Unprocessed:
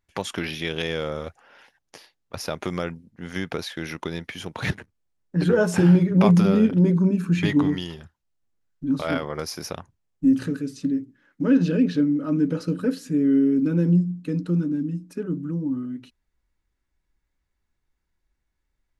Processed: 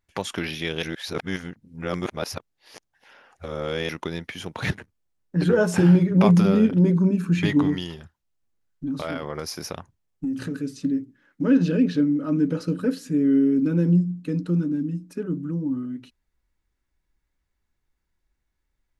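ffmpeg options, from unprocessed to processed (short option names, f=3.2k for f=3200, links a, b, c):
-filter_complex "[0:a]asettb=1/sr,asplit=3[a][b][c];[a]atrim=end=8.864[d];[b]atrim=start=8.86:end=10.61,asetpts=PTS-STARTPTS,afade=t=in:d=0.004:c=qsin,afade=t=out:st=1.746:d=0.004:c=qsin,acompressor=threshold=-24dB:ratio=6:attack=3.2:release=140:knee=1:detection=peak[e];[c]atrim=start=10.606[f];[d][e]acrossfade=d=0.004:c1=hsin:c2=qsin[g];[g][f]acrossfade=d=0.004:c1=qsin:c2=hsin,asplit=3[h][i][j];[h]atrim=end=0.832[k];[i]atrim=start=0.828:end=3.892,asetpts=PTS-STARTPTS,areverse[l];[j]atrim=start=3.888[m];[k][l]acrossfade=d=0.004:c1=hsin:c2=hsin[n];[n][m]acrossfade=d=0.004:c1=hsin:c2=hsin"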